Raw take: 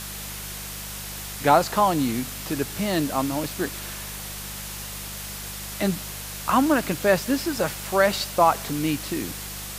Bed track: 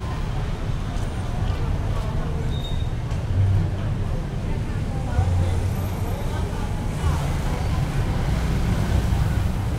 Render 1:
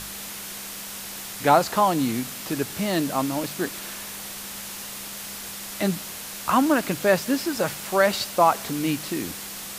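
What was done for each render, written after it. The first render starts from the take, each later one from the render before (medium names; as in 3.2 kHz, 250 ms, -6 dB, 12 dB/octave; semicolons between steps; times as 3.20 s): de-hum 50 Hz, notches 3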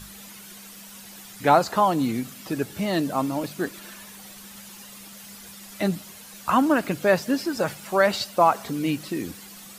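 noise reduction 11 dB, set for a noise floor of -36 dBFS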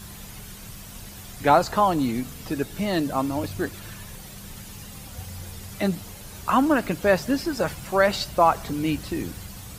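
add bed track -18 dB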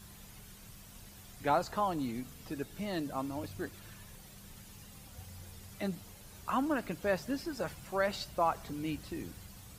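trim -12 dB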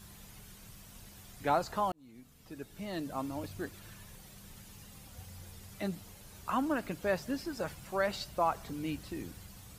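1.92–3.24 s: fade in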